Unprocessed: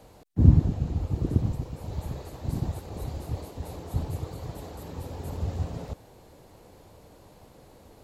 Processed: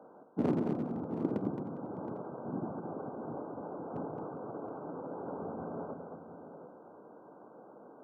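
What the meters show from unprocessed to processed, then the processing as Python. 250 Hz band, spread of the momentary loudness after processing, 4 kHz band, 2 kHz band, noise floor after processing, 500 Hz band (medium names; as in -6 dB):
-3.5 dB, 20 LU, under -15 dB, -3.5 dB, -55 dBFS, +2.0 dB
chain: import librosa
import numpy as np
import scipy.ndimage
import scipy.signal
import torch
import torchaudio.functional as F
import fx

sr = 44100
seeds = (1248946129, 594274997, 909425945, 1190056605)

y = fx.brickwall_lowpass(x, sr, high_hz=1600.0)
y = y + 10.0 ** (-15.5 / 20.0) * np.pad(y, (int(545 * sr / 1000.0), 0))[:len(y)]
y = np.clip(10.0 ** (17.0 / 20.0) * y, -1.0, 1.0) / 10.0 ** (17.0 / 20.0)
y = scipy.signal.sosfilt(scipy.signal.butter(4, 210.0, 'highpass', fs=sr, output='sos'), y)
y = fx.echo_multitap(y, sr, ms=(219, 406, 720, 802), db=(-6.0, -19.0, -13.0, -19.5))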